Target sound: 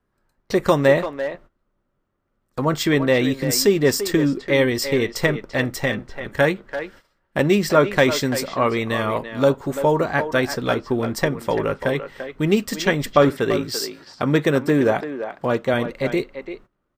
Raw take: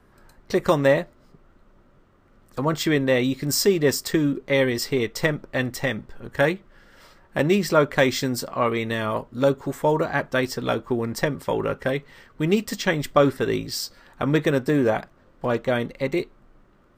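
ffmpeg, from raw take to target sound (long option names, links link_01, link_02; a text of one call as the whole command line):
ffmpeg -i in.wav -filter_complex "[0:a]asettb=1/sr,asplit=3[link_01][link_02][link_03];[link_01]atrim=end=13.294[link_04];[link_02]atrim=start=13.29:end=15.74,asetpts=PTS-STARTPTS,afade=type=in:duration=0.004:curve=qsin,afade=type=out:start_time=2.446:duration=0.004:curve=qsin,highpass=87[link_05];[link_03]atrim=start=15.736[link_06];[link_04][link_05]acrossfade=duration=0.004:curve1=hsin:curve2=qsin[link_07];[link_07][link_06]acrossfade=duration=0.004:curve1=qsin:curve2=hsin,asplit=2[link_08][link_09];[link_09]adelay=340,highpass=300,lowpass=3400,asoftclip=type=hard:threshold=-12dB,volume=-9dB[link_10];[link_08][link_10]amix=inputs=2:normalize=0,agate=range=-19dB:threshold=-45dB:ratio=16:detection=peak,volume=2.5dB" out.wav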